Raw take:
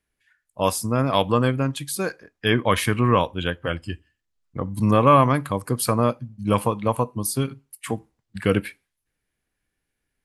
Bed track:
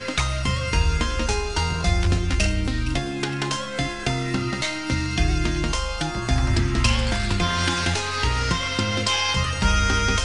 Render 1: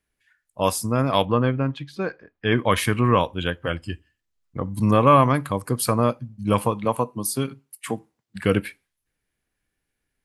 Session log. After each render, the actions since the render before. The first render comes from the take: 1.25–2.52 s: distance through air 260 m; 6.85–8.41 s: high-pass 140 Hz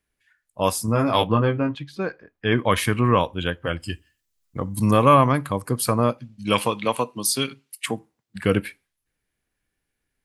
0.86–1.75 s: doubling 18 ms -4 dB; 3.79–5.14 s: treble shelf 3.3 kHz -> 5.7 kHz +11.5 dB; 6.18–7.86 s: frequency weighting D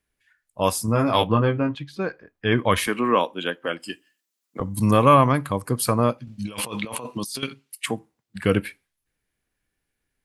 2.87–4.60 s: high-pass 220 Hz 24 dB/octave; 6.27–7.43 s: compressor with a negative ratio -32 dBFS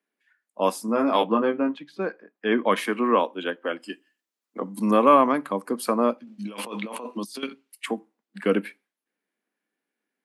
steep high-pass 200 Hz 48 dB/octave; treble shelf 3 kHz -10.5 dB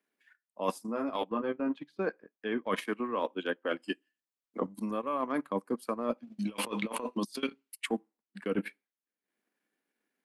reverse; compression 16:1, threshold -29 dBFS, peak gain reduction 19 dB; reverse; transient shaper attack +3 dB, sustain -12 dB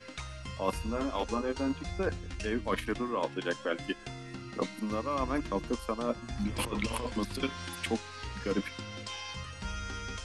add bed track -18.5 dB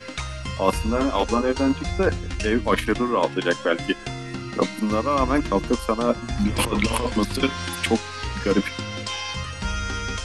trim +11 dB

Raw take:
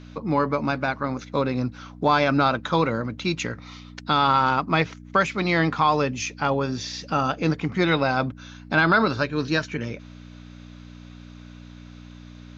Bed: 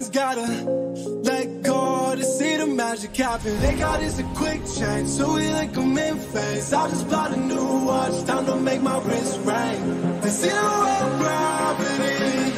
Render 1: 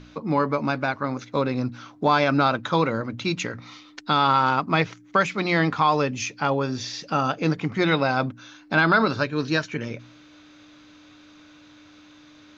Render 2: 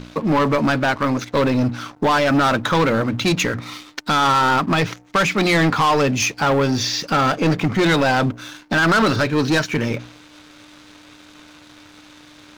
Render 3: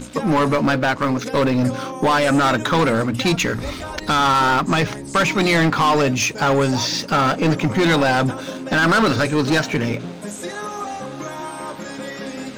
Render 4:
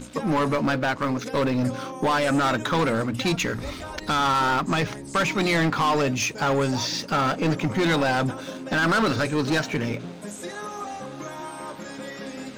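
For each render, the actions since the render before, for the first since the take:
de-hum 60 Hz, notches 4
peak limiter -11 dBFS, peak gain reduction 5.5 dB; waveshaping leveller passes 3
add bed -8.5 dB
trim -5.5 dB

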